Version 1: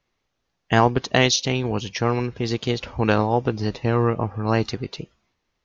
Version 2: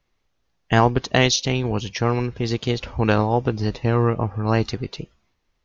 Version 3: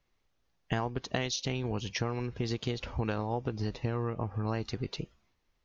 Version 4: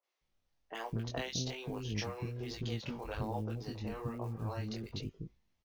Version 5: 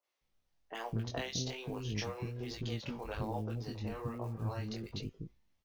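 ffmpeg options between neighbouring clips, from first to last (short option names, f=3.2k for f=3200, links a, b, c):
-af "lowshelf=f=62:g=10.5"
-af "acompressor=threshold=-24dB:ratio=6,volume=-4.5dB"
-filter_complex "[0:a]flanger=delay=18:depth=5.3:speed=1.2,acrusher=bits=8:mode=log:mix=0:aa=0.000001,acrossover=split=380|1400[a][b][c];[c]adelay=30[d];[a]adelay=210[e];[e][b][d]amix=inputs=3:normalize=0,volume=-1.5dB"
-af "flanger=delay=3.3:depth=7:regen=86:speed=0.37:shape=sinusoidal,volume=4.5dB"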